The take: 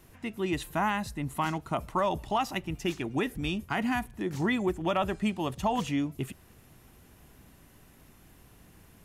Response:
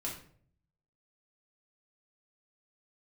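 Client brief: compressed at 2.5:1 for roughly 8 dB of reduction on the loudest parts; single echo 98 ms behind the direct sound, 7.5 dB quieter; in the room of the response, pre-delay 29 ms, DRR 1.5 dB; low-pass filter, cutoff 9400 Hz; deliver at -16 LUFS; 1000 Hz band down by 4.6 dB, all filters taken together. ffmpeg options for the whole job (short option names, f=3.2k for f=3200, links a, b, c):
-filter_complex "[0:a]lowpass=9.4k,equalizer=f=1k:t=o:g=-6,acompressor=threshold=-37dB:ratio=2.5,aecho=1:1:98:0.422,asplit=2[a][b];[1:a]atrim=start_sample=2205,adelay=29[c];[b][c]afir=irnorm=-1:irlink=0,volume=-2.5dB[d];[a][d]amix=inputs=2:normalize=0,volume=18.5dB"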